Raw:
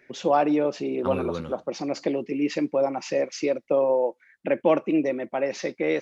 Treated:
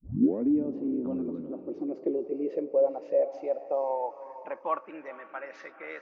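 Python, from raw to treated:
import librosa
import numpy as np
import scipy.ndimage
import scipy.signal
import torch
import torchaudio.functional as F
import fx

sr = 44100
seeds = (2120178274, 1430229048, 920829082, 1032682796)

y = fx.tape_start_head(x, sr, length_s=0.51)
y = fx.echo_diffused(y, sr, ms=455, feedback_pct=42, wet_db=-12.0)
y = fx.filter_sweep_bandpass(y, sr, from_hz=260.0, to_hz=1400.0, start_s=1.28, end_s=5.21, q=4.3)
y = F.gain(torch.from_numpy(y), 2.0).numpy()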